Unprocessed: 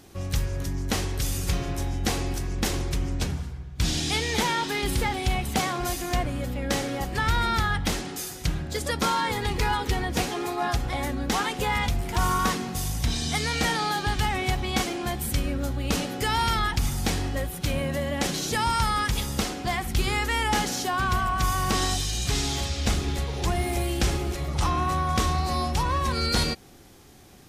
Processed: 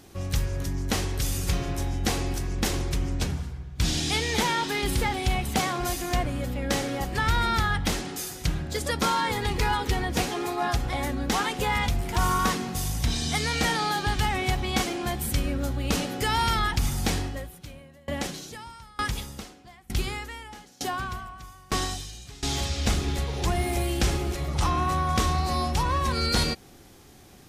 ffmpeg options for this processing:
-filter_complex "[0:a]asettb=1/sr,asplit=3[s0][s1][s2];[s0]atrim=end=17.174[s3];[s1]atrim=start=17.17:end=22.43,asetpts=PTS-STARTPTS,afade=t=in:d=0.004:c=qsin,afade=t=out:st=5.256:d=0.004:c=qsin,aeval=exprs='val(0)*pow(10,-28*if(lt(mod(1.1*n/s,1),2*abs(1.1)/1000),1-mod(1.1*n/s,1)/(2*abs(1.1)/1000),(mod(1.1*n/s,1)-2*abs(1.1)/1000)/(1-2*abs(1.1)/1000))/20)':c=same[s4];[s2]atrim=start=22.426[s5];[s3][s4]acrossfade=d=0.004:c1=hsin:c2=qsin[s6];[s6][s5]acrossfade=d=0.004:c1=qsin:c2=hsin"

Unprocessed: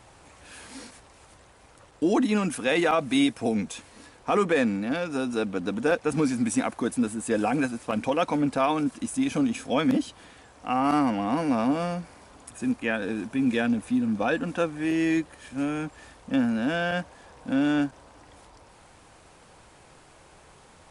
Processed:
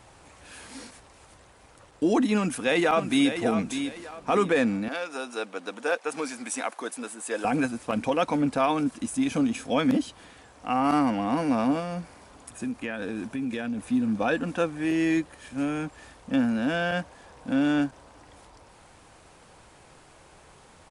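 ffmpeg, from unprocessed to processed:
-filter_complex "[0:a]asplit=2[s0][s1];[s1]afade=t=in:st=2.36:d=0.01,afade=t=out:st=3.37:d=0.01,aecho=0:1:600|1200|1800|2400:0.375837|0.112751|0.0338254|0.0101476[s2];[s0][s2]amix=inputs=2:normalize=0,asettb=1/sr,asplit=3[s3][s4][s5];[s3]atrim=end=4.884[s6];[s4]atrim=start=4.88:end=7.45,asetpts=PTS-STARTPTS,afade=t=in:d=0.004:c=qsin,afade=t=out:st=2.566:d=0.004:c=qsin,highpass=540[s7];[s5]atrim=start=7.446[s8];[s6][s7]acrossfade=d=0.004:c1=hsin:c2=qsin[s9];[s9][s8]acrossfade=d=0.004:c1=qsin:c2=hsin,asettb=1/sr,asplit=3[s10][s11][s12];[s10]atrim=end=11.794[s13];[s11]atrim=start=11.79:end=13.89,asetpts=PTS-STARTPTS,afade=t=in:d=0.004:c=qsin,afade=t=out:st=2.096:d=0.004:c=qsin,acompressor=threshold=0.0447:ratio=6:attack=3.2:release=140:knee=1:detection=peak[s14];[s12]atrim=start=13.886[s15];[s13][s14]acrossfade=d=0.004:c1=hsin:c2=qsin[s16];[s16][s15]acrossfade=d=0.004:c1=qsin:c2=hsin"

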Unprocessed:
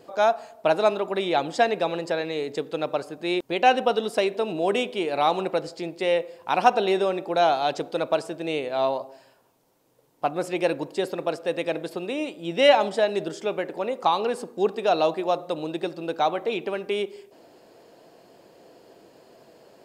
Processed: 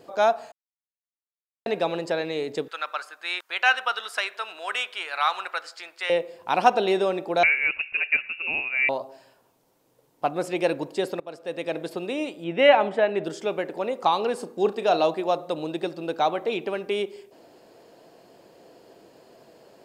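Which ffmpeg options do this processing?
-filter_complex "[0:a]asettb=1/sr,asplit=3[s0][s1][s2];[s0]atrim=end=2.684[s3];[s1]atrim=start=2.68:end=6.1,asetpts=PTS-STARTPTS,afade=t=in:d=0.004:c=qsin,afade=t=out:st=3.416:d=0.004:c=qsin,highpass=f=1400:t=q:w=2.9[s4];[s2]atrim=start=6.096[s5];[s3][s4]acrossfade=d=0.004:c1=hsin:c2=qsin[s6];[s6][s5]acrossfade=d=0.004:c1=qsin:c2=hsin,asettb=1/sr,asplit=3[s7][s8][s9];[s7]atrim=end=7.434[s10];[s8]atrim=start=7.43:end=8.89,asetpts=PTS-STARTPTS,afade=t=in:d=0.004:c=qsin,afade=t=out:st=1.456:d=0.004:c=qsin,lowpass=f=2600:t=q:w=0.5098,lowpass=f=2600:t=q:w=0.6013,lowpass=f=2600:t=q:w=0.9,lowpass=f=2600:t=q:w=2.563,afreqshift=-3000[s11];[s9]atrim=start=8.886[s12];[s10][s11]acrossfade=d=0.004:c1=hsin:c2=qsin[s13];[s13][s12]acrossfade=d=0.004:c1=qsin:c2=hsin,asettb=1/sr,asplit=3[s14][s15][s16];[s14]atrim=end=12.444[s17];[s15]atrim=start=12.44:end=13.24,asetpts=PTS-STARTPTS,afade=t=in:d=0.004:c=qsin,afade=t=out:st=0.796:d=0.004:c=qsin,highshelf=f=3400:t=q:w=1.5:g=-13[s18];[s16]atrim=start=13.236[s19];[s17][s18]acrossfade=d=0.004:c1=hsin:c2=qsin[s20];[s20][s19]acrossfade=d=0.004:c1=qsin:c2=hsin,asettb=1/sr,asplit=3[s21][s22][s23];[s21]atrim=end=14.364[s24];[s22]atrim=start=14.36:end=15.04,asetpts=PTS-STARTPTS,afade=t=in:d=0.004:c=qsin,afade=t=out:st=0.676:d=0.004:c=qsin,asplit=2[s25][s26];[s26]adelay=35,volume=0.251[s27];[s25][s27]amix=inputs=2:normalize=0,atrim=end_sample=29988[s28];[s23]atrim=start=15.036[s29];[s24][s28]acrossfade=d=0.004:c1=hsin:c2=qsin[s30];[s30][s29]acrossfade=d=0.004:c1=qsin:c2=hsin,asplit=4[s31][s32][s33][s34];[s31]atrim=end=0.52,asetpts=PTS-STARTPTS,afade=t=out:st=0.516:d=0.004:c=hsin[s35];[s32]atrim=start=0.52:end=1.66,asetpts=PTS-STARTPTS,volume=0[s36];[s33]atrim=start=1.66:end=11.2,asetpts=PTS-STARTPTS,afade=t=in:d=0.004:c=hsin,afade=t=out:st=9.536:d=0.004:c=hsin:silence=0.133352[s37];[s34]atrim=start=11.2,asetpts=PTS-STARTPTS,afade=t=in:d=0.66:silence=0.133352[s38];[s35][s36][s37][s38]concat=n=4:v=0:a=1"

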